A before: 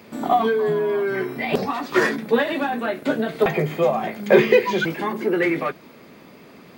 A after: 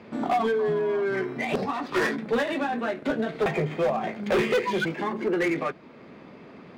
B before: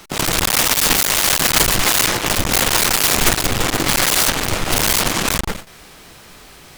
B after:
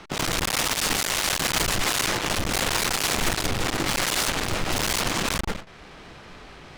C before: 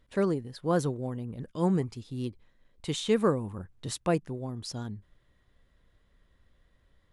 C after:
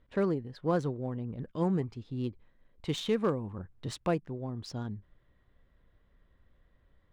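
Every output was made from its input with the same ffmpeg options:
-af "adynamicsmooth=sensitivity=5:basefreq=3.2k,asoftclip=type=hard:threshold=-15dB,alimiter=limit=-19dB:level=0:latency=1:release=465"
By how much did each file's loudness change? -5.5, -9.0, -2.5 LU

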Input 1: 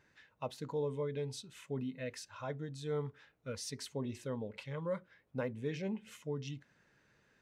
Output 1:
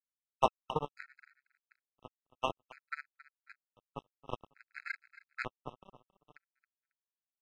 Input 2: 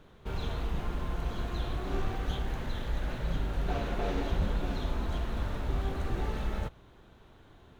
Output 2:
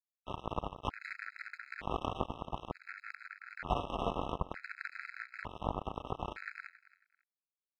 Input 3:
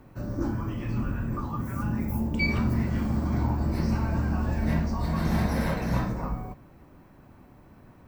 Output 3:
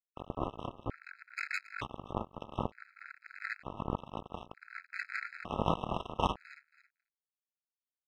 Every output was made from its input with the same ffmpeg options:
-filter_complex "[0:a]highpass=59,aecho=1:1:1.5:0.3,acompressor=threshold=-35dB:ratio=5,lowpass=f=1k:t=q:w=4.9,flanger=delay=18:depth=4.1:speed=2.3,acrusher=bits=4:mix=0:aa=0.5,asplit=2[a][b];[b]aecho=0:1:273|546:0.141|0.0339[c];[a][c]amix=inputs=2:normalize=0,afftfilt=real='re*gt(sin(2*PI*0.55*pts/sr)*(1-2*mod(floor(b*sr/1024/1300),2)),0)':imag='im*gt(sin(2*PI*0.55*pts/sr)*(1-2*mod(floor(b*sr/1024/1300),2)),0)':win_size=1024:overlap=0.75,volume=11.5dB"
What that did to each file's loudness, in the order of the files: +1.0, -6.0, -11.0 LU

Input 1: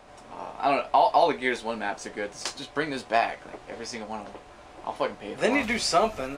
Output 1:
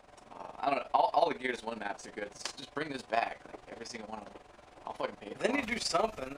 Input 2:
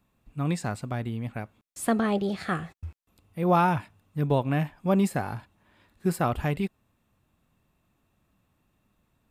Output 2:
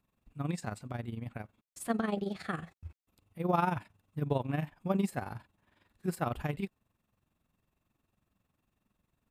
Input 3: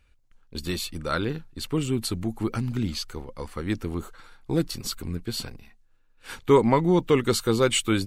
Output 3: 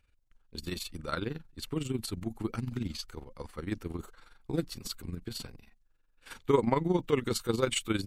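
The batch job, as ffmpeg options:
-af "tremolo=f=22:d=0.71,volume=-4.5dB"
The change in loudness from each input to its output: -7.5, -7.5, -7.5 LU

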